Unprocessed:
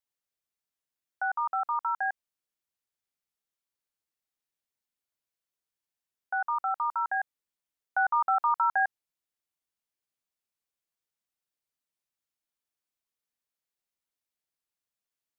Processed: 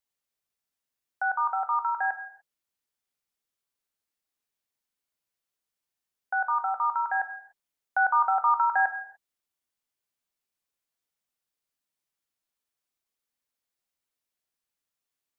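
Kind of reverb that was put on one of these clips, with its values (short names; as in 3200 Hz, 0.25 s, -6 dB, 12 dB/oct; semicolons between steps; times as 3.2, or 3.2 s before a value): non-linear reverb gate 0.32 s falling, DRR 8.5 dB; gain +2 dB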